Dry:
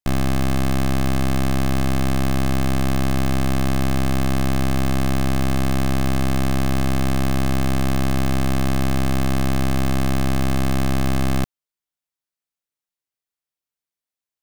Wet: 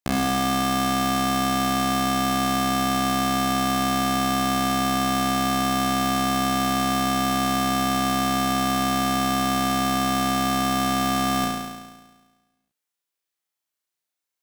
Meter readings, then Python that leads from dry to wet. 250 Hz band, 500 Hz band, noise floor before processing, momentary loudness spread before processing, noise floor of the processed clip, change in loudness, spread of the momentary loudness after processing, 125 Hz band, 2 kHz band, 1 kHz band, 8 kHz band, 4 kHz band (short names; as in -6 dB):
-1.0 dB, -1.5 dB, under -85 dBFS, 0 LU, -85 dBFS, 0.0 dB, 0 LU, -10.0 dB, +2.0 dB, +7.5 dB, +4.5 dB, +6.0 dB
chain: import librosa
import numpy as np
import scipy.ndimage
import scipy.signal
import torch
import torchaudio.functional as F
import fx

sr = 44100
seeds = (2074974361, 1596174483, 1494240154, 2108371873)

p1 = fx.highpass(x, sr, hz=230.0, slope=6)
y = p1 + fx.room_flutter(p1, sr, wall_m=5.9, rt60_s=1.3, dry=0)